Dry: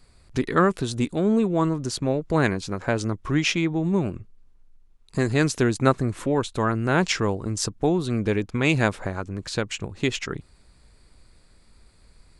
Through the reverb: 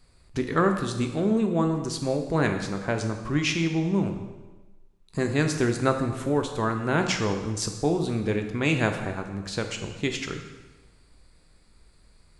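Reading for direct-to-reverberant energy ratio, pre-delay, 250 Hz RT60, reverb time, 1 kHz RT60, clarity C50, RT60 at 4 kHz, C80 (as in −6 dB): 5.0 dB, 6 ms, 1.2 s, 1.2 s, 1.2 s, 7.0 dB, 1.1 s, 9.0 dB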